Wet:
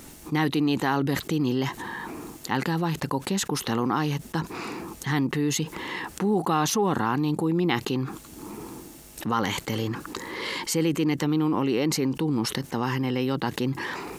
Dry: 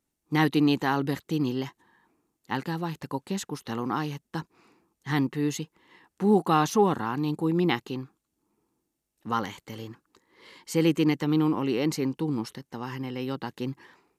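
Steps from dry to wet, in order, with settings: level flattener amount 70%; trim -4 dB

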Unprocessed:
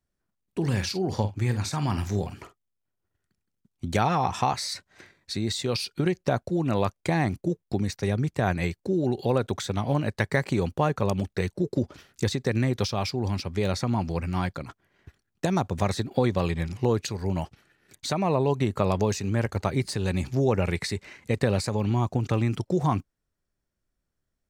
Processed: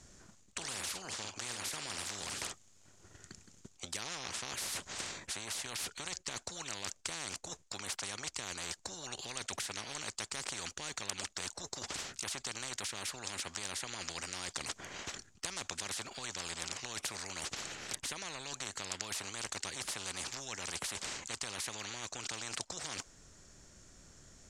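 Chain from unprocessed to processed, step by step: reverse; compression 6:1, threshold -37 dBFS, peak gain reduction 19 dB; reverse; resonant low-pass 6.9 kHz, resonance Q 4.9; spectrum-flattening compressor 10:1; trim +5 dB

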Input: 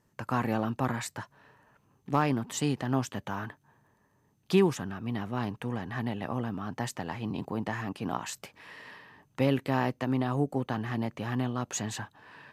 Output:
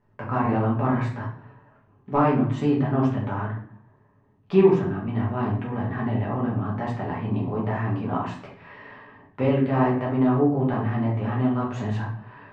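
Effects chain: low-pass 1.9 kHz 12 dB/octave; simulated room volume 70 m³, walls mixed, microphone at 1.3 m

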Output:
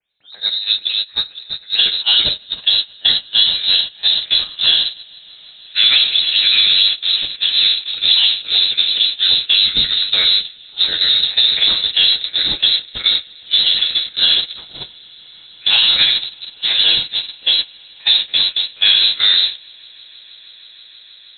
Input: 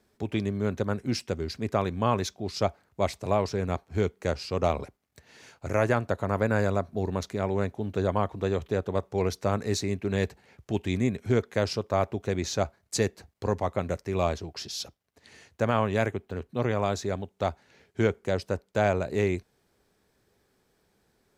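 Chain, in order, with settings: plate-style reverb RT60 0.7 s, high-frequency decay 0.85×, DRR 3.5 dB; in parallel at -1 dB: compression 5:1, threshold -33 dBFS, peak gain reduction 14 dB; on the sum: phase dispersion lows, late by 102 ms, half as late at 470 Hz; on a send: echo with a slow build-up 159 ms, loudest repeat 8, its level -15.5 dB; on the sum: gate -23 dBFS, range -21 dB; frequency inversion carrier 4 kHz; loudness maximiser +10 dB; trim -1 dB

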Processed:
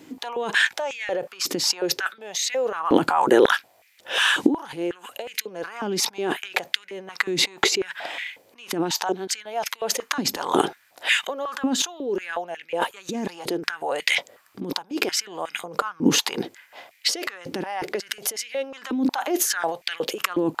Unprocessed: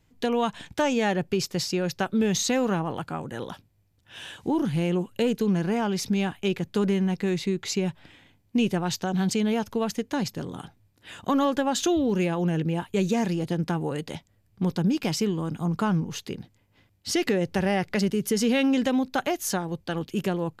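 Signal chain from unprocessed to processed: compressor with a negative ratio -36 dBFS, ratio -1; step-sequenced high-pass 5.5 Hz 290–2100 Hz; trim +9 dB

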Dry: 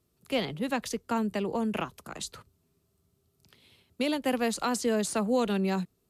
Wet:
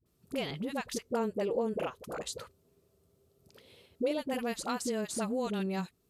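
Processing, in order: 1.02–4.17 s: peaking EQ 500 Hz +14 dB 0.71 oct; compression 2:1, threshold -35 dBFS, peak gain reduction 10.5 dB; phase dispersion highs, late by 59 ms, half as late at 520 Hz

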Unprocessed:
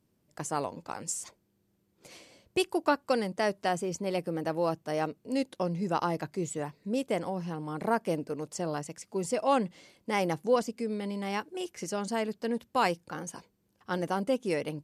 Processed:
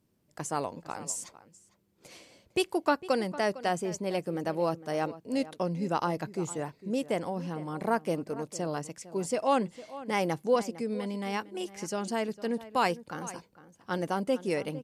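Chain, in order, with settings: echo from a far wall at 78 m, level -16 dB

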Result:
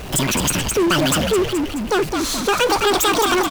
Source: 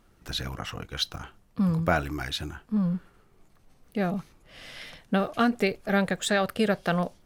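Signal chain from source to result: in parallel at -2.5 dB: compressor with a negative ratio -31 dBFS; on the sum: frequency-shifting echo 440 ms, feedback 40%, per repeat -36 Hz, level -7 dB; wide varispeed 2.07×; power-law waveshaper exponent 0.5

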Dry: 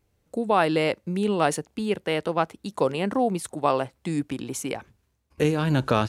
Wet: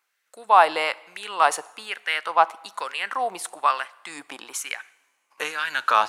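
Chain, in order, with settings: LFO high-pass sine 1.1 Hz 820–1700 Hz; two-slope reverb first 0.85 s, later 3.5 s, from -21 dB, DRR 19 dB; trim +2.5 dB

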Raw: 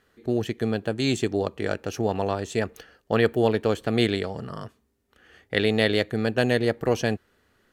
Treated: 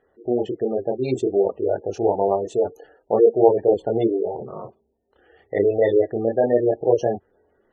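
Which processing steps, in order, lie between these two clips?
chorus voices 2, 0.27 Hz, delay 27 ms, depth 3.9 ms; high-order bell 550 Hz +10.5 dB; spectral gate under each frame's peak -20 dB strong; trim -1 dB

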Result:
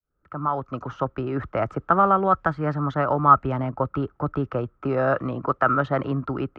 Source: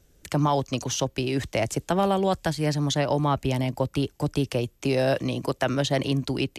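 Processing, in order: fade-in on the opening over 1.07 s; resonant low-pass 1.3 kHz, resonance Q 14; tape noise reduction on one side only decoder only; trim -1 dB

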